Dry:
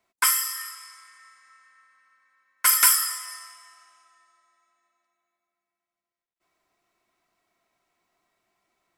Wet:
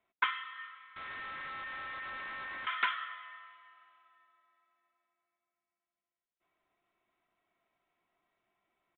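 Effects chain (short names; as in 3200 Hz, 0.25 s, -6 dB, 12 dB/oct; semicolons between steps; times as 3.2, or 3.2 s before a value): 0.96–2.67 infinite clipping; downsampling 8000 Hz; gain -5.5 dB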